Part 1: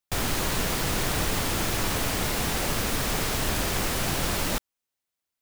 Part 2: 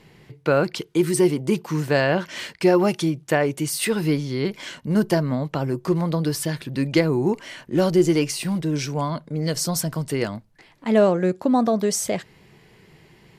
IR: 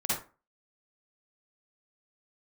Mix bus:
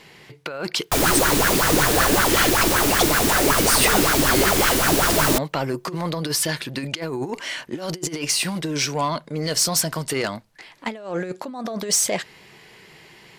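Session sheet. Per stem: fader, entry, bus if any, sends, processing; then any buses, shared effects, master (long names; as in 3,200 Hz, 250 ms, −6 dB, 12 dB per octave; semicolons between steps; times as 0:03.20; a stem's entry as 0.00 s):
+2.0 dB, 0.80 s, no send, auto-filter bell 5.3 Hz 280–1,600 Hz +17 dB
−3.0 dB, 0.00 s, no send, compressor whose output falls as the input rises −23 dBFS, ratio −0.5; mid-hump overdrive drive 12 dB, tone 4,300 Hz, clips at −8.5 dBFS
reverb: not used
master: high-shelf EQ 3,700 Hz +8 dB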